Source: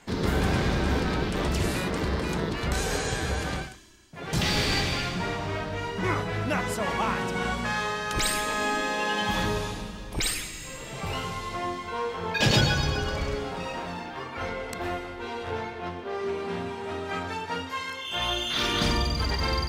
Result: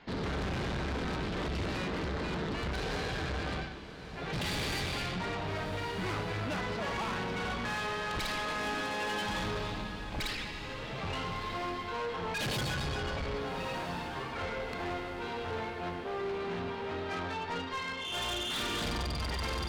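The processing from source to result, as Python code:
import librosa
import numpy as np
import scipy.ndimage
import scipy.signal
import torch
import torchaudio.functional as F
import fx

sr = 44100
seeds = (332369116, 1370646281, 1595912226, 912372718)

p1 = scipy.signal.sosfilt(scipy.signal.butter(6, 4700.0, 'lowpass', fs=sr, output='sos'), x)
p2 = fx.tube_stage(p1, sr, drive_db=32.0, bias=0.4)
y = p2 + fx.echo_diffused(p2, sr, ms=1306, feedback_pct=48, wet_db=-12.0, dry=0)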